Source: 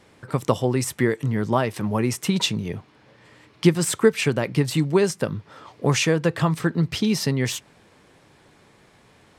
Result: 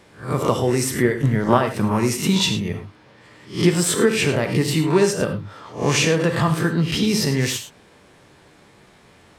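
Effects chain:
peak hold with a rise ahead of every peak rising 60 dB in 0.34 s
in parallel at −3 dB: brickwall limiter −12.5 dBFS, peak gain reduction 10 dB
0:01.04–0:01.93: on the sum: transient designer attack +11 dB, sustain −6 dB
reverb whose tail is shaped and stops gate 130 ms flat, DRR 6 dB
level −3 dB

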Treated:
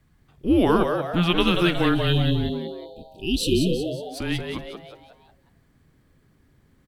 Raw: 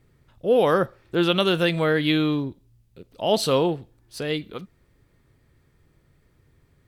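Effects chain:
time-frequency box erased 0:01.95–0:04.02, 560–2,600 Hz
mains-hum notches 60/120/180 Hz
frequency shifter −170 Hz
on a send: echo with shifted repeats 182 ms, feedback 45%, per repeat +130 Hz, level −6 dB

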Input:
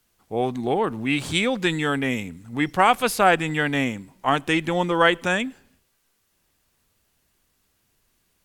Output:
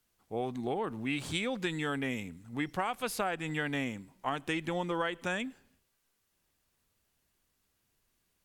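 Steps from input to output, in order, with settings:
downward compressor 10 to 1, threshold −20 dBFS, peak gain reduction 9.5 dB
level −8.5 dB

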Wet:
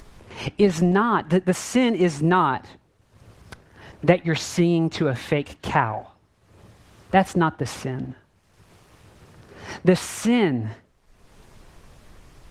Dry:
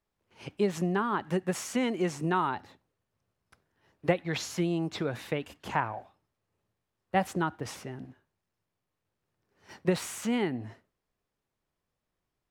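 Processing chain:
low-pass filter 9,400 Hz 12 dB per octave
in parallel at +2 dB: upward compression, threshold −30 dBFS
on the sum: low-shelf EQ 81 Hz +9.5 dB
level +2 dB
Opus 20 kbit/s 48,000 Hz

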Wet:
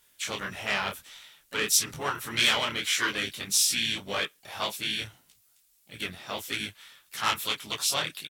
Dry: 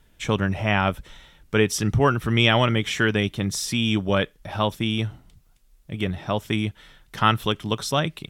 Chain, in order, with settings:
pitch-shifted copies added −7 semitones −9 dB, −5 semitones −9 dB, +4 semitones −12 dB
soft clipping −10.5 dBFS, distortion −18 dB
spectral tilt +4.5 dB per octave
micro pitch shift up and down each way 58 cents
level −4 dB

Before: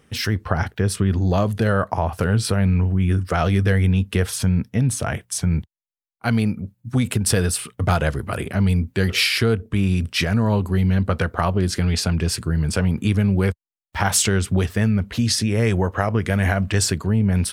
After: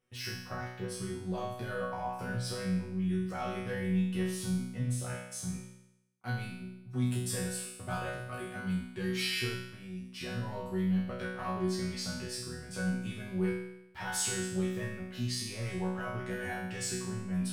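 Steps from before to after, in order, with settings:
mains-hum notches 50/100/150/200 Hz
leveller curve on the samples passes 1
0:09.62–0:10.21: downward compressor 6 to 1, threshold −23 dBFS, peak gain reduction 10.5 dB
resonators tuned to a chord B2 fifth, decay 0.84 s

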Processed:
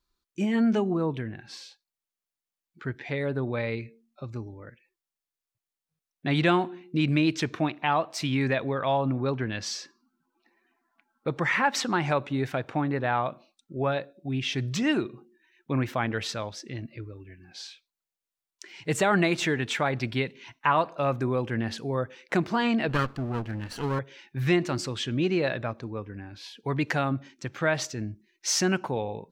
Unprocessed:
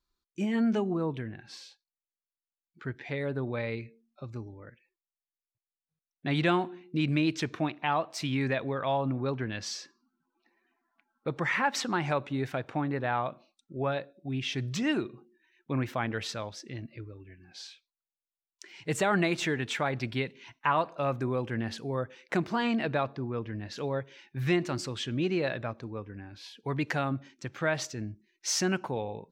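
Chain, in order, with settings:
0:22.89–0:23.99: lower of the sound and its delayed copy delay 0.67 ms
level +3.5 dB

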